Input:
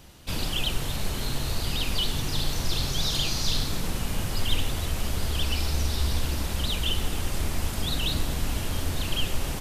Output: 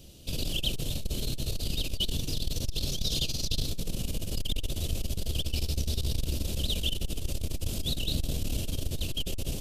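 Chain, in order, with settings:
flat-topped bell 1,300 Hz −16 dB
saturating transformer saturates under 110 Hz

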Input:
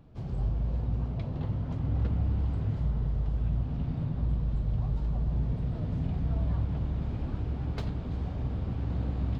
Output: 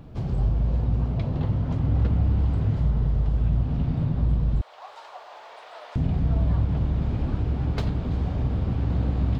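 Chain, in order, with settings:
0:04.61–0:05.96: inverse Chebyshev high-pass filter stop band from 210 Hz, stop band 60 dB
in parallel at +0.5 dB: downward compressor, threshold −41 dBFS, peak gain reduction 16 dB
on the sum: level +5 dB

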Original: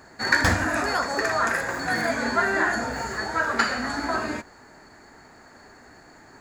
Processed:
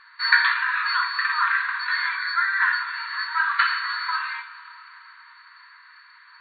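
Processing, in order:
0:02.16–0:02.62: phaser with its sweep stopped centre 2,900 Hz, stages 6
coupled-rooms reverb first 0.37 s, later 4.3 s, from −18 dB, DRR 4 dB
brick-wall band-pass 920–4,500 Hz
level +2 dB

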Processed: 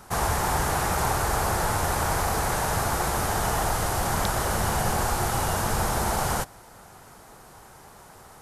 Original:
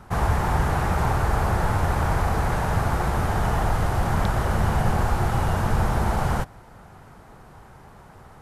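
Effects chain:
bass and treble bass −7 dB, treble +12 dB

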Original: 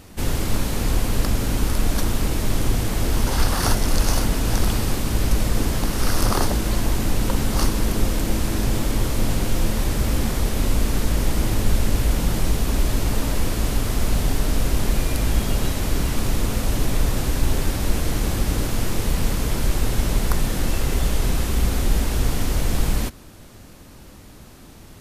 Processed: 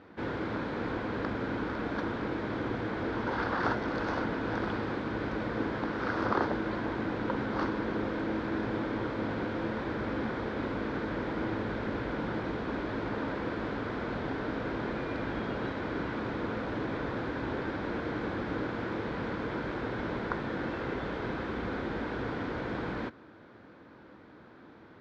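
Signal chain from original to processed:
loudspeaker in its box 150–3,200 Hz, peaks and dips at 160 Hz −3 dB, 320 Hz +5 dB, 480 Hz +5 dB, 970 Hz +4 dB, 1,500 Hz +8 dB, 2,800 Hz −8 dB
level −7.5 dB

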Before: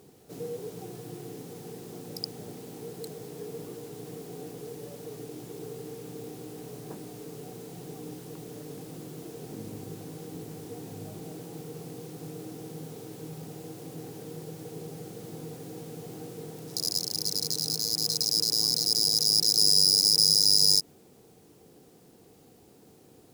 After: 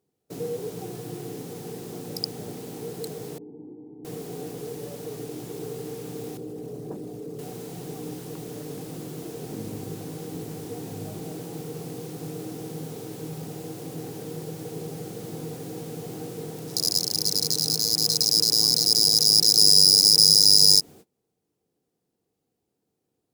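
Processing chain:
0:06.37–0:07.39: spectral envelope exaggerated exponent 1.5
noise gate −48 dBFS, range −28 dB
0:03.38–0:04.05: formant resonators in series u
level +5.5 dB

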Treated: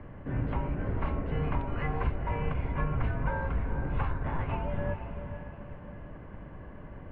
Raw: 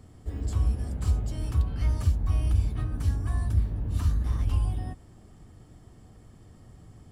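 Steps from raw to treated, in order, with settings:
in parallel at −3 dB: downward compressor, threshold −30 dBFS, peak gain reduction 12 dB
on the sum: feedback delay with all-pass diffusion 474 ms, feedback 41%, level −9 dB
single-sideband voice off tune −160 Hz 160–2,500 Hz
level +8 dB

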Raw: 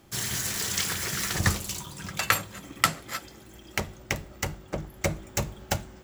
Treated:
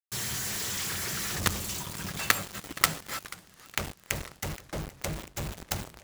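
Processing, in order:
log-companded quantiser 2 bits
feedback echo with a swinging delay time 479 ms, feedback 62%, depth 202 cents, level −19 dB
level −7 dB

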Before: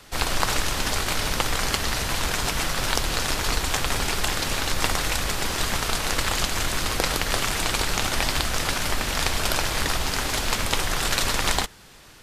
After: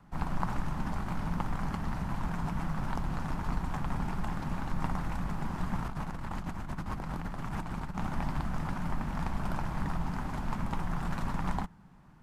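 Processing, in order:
drawn EQ curve 110 Hz 0 dB, 170 Hz +11 dB, 470 Hz −12 dB, 900 Hz 0 dB, 3,700 Hz −23 dB
0:05.78–0:07.98: compressor whose output falls as the input rises −30 dBFS, ratio −1
level −6 dB

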